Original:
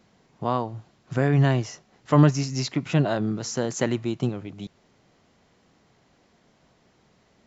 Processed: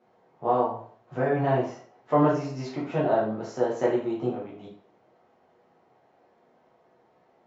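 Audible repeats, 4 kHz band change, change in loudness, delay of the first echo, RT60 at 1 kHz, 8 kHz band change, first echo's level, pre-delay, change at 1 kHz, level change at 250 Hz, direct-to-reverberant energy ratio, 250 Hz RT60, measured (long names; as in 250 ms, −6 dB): no echo audible, −12.5 dB, −2.5 dB, no echo audible, 0.50 s, can't be measured, no echo audible, 7 ms, +3.0 dB, −4.0 dB, −6.5 dB, 0.50 s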